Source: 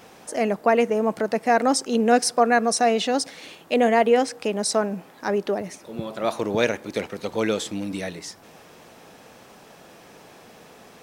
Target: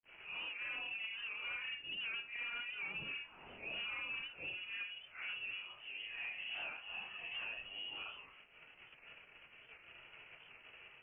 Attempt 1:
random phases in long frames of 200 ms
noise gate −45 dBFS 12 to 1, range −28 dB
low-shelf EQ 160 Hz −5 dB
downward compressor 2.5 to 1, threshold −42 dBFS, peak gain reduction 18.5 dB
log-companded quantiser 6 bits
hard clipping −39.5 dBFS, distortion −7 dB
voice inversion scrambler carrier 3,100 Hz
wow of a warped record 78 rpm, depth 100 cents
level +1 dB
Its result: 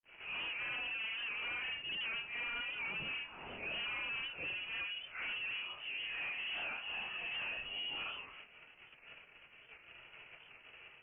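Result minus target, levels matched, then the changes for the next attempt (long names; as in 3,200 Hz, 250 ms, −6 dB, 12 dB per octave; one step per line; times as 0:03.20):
downward compressor: peak gain reduction −7 dB
change: downward compressor 2.5 to 1, threshold −54 dBFS, peak gain reduction 25.5 dB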